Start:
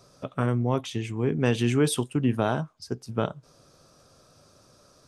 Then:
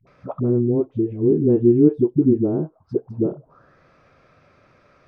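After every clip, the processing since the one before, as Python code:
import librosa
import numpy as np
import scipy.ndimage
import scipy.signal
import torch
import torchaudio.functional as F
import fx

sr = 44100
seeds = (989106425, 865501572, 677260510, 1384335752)

y = fx.dispersion(x, sr, late='highs', ms=70.0, hz=370.0)
y = fx.envelope_lowpass(y, sr, base_hz=350.0, top_hz=2300.0, q=5.4, full_db=-25.5, direction='down')
y = y * librosa.db_to_amplitude(1.5)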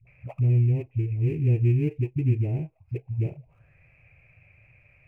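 y = fx.dead_time(x, sr, dead_ms=0.066)
y = fx.curve_eq(y, sr, hz=(120.0, 220.0, 390.0, 790.0, 1300.0, 2500.0, 3500.0), db=(0, -22, -22, -15, -28, 6, -29))
y = y * librosa.db_to_amplitude(5.5)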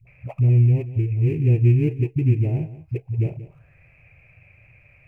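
y = x + 10.0 ** (-15.5 / 20.0) * np.pad(x, (int(181 * sr / 1000.0), 0))[:len(x)]
y = y * librosa.db_to_amplitude(4.5)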